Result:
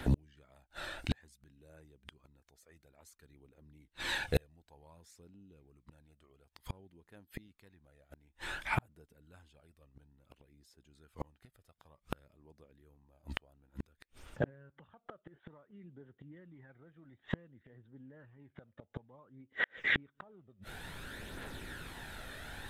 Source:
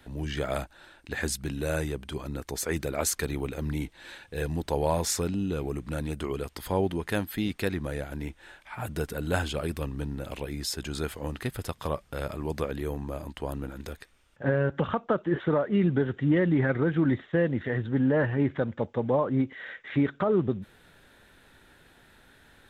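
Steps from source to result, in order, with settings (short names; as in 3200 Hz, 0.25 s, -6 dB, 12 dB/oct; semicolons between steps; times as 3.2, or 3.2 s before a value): phaser 0.56 Hz, delay 1.7 ms, feedback 41%; flipped gate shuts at -26 dBFS, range -42 dB; gain +9 dB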